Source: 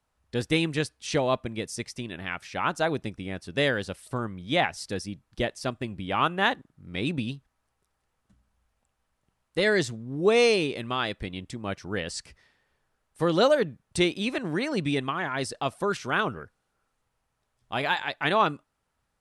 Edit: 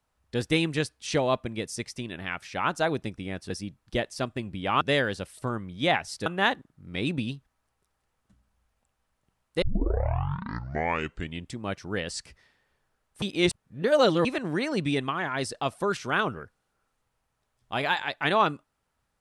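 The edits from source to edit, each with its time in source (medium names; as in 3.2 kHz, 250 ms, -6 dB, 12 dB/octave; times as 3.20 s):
4.95–6.26 s: move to 3.50 s
9.62 s: tape start 1.90 s
13.22–14.25 s: reverse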